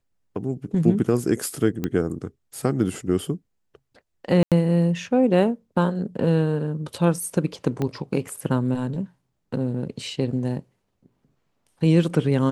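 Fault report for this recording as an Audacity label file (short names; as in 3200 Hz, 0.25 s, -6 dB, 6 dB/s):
1.840000	1.840000	pop -13 dBFS
4.430000	4.520000	gap 87 ms
7.820000	7.820000	pop -14 dBFS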